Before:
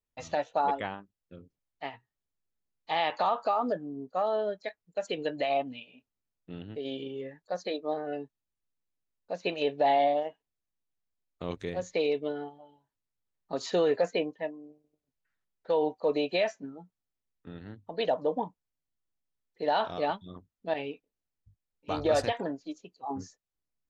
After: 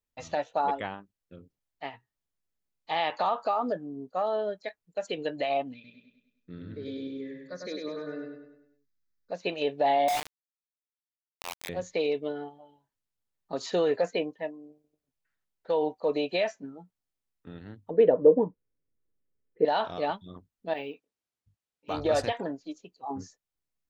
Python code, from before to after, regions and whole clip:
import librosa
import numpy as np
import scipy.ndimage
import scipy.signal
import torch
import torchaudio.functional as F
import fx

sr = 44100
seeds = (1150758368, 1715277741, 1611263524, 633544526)

y = fx.chain(x, sr, fx.fixed_phaser(hz=2900.0, stages=6),
    fx.echo_feedback(ms=100, feedback_pct=48, wet_db=-3.0), at=(5.74, 9.32))
y = fx.chain(y, sr, fx.cheby_ripple_highpass(hz=660.0, ripple_db=6),
    fx.quant_companded(bits=2), at=(10.08, 11.69))
y = fx.chain(y, sr, fx.lowpass(hz=2200.0, slope=24),
    fx.low_shelf_res(hz=590.0, db=7.0, q=3.0), at=(17.9, 19.65))
y = fx.chain(y, sr, fx.highpass(hz=190.0, slope=6),
    fx.resample_linear(factor=2), at=(20.73, 21.94))